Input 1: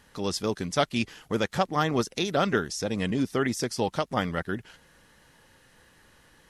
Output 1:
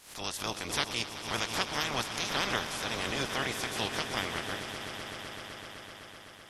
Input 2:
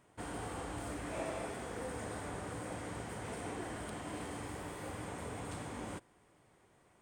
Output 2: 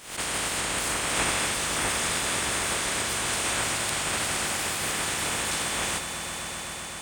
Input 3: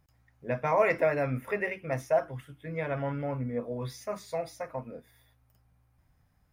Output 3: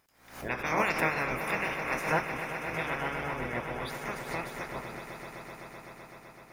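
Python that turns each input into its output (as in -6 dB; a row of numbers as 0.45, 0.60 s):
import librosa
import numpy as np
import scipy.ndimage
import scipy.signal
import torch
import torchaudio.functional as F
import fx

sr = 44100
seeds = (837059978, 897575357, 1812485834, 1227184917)

p1 = fx.spec_clip(x, sr, under_db=26)
p2 = p1 + fx.echo_swell(p1, sr, ms=127, loudest=5, wet_db=-13, dry=0)
p3 = fx.pre_swell(p2, sr, db_per_s=100.0)
y = librosa.util.normalize(p3) * 10.0 ** (-12 / 20.0)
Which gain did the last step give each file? -7.5, +13.0, -3.0 dB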